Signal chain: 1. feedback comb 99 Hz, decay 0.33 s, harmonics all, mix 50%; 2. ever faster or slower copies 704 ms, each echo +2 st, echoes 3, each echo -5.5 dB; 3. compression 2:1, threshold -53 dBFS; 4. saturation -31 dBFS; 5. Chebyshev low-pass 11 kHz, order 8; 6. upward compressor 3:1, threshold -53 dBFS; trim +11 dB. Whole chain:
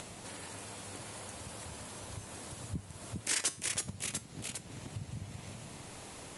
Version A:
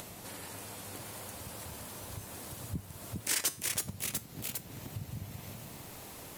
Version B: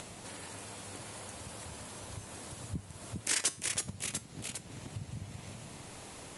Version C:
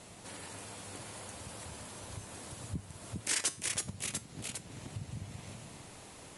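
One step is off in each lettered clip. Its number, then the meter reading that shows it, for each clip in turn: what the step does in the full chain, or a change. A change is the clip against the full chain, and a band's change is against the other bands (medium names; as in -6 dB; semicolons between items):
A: 5, crest factor change -2.5 dB; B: 4, distortion -19 dB; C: 6, momentary loudness spread change +1 LU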